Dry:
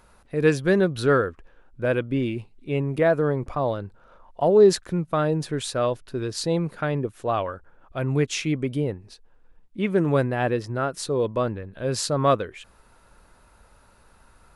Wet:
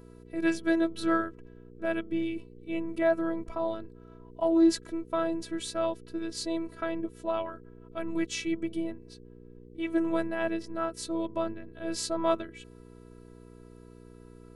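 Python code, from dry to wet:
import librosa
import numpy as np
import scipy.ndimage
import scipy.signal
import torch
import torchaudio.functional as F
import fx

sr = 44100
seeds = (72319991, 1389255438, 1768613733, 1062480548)

y = fx.robotise(x, sr, hz=329.0)
y = fx.dmg_buzz(y, sr, base_hz=60.0, harmonics=8, level_db=-47.0, tilt_db=-1, odd_only=False)
y = y * 10.0 ** (-4.0 / 20.0)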